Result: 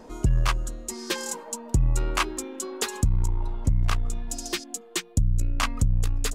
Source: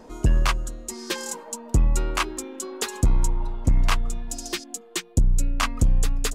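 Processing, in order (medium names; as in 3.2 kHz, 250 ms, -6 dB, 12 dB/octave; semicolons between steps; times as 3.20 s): transformer saturation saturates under 70 Hz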